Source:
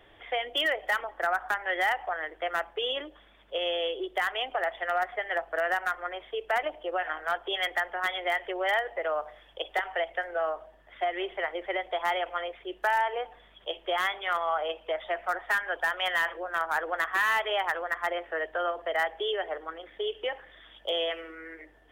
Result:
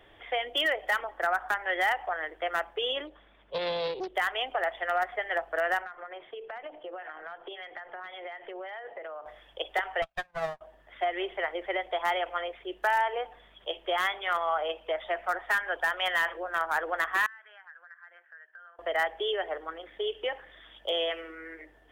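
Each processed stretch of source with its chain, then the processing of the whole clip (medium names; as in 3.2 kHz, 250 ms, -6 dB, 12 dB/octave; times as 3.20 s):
3.07–4.15 s: treble shelf 3.9 kHz -10.5 dB + loudspeaker Doppler distortion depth 0.41 ms
5.82–9.26 s: hum notches 50/100/150/200/250/300/350/400/450/500 Hz + compression 16:1, threshold -35 dBFS + distance through air 230 m
10.02–10.61 s: comb filter that takes the minimum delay 1.2 ms + upward expansion 2.5:1, over -48 dBFS
17.26–18.79 s: band-pass filter 1.6 kHz, Q 11 + compression 3:1, threshold -49 dBFS
whole clip: none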